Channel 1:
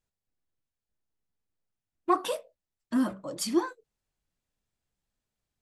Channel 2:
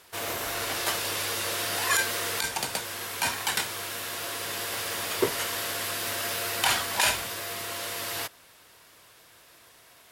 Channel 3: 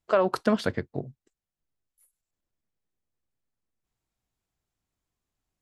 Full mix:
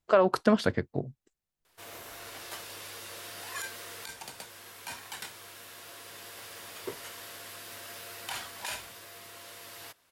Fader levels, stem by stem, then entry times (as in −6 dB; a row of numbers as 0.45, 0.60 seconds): muted, −13.5 dB, +0.5 dB; muted, 1.65 s, 0.00 s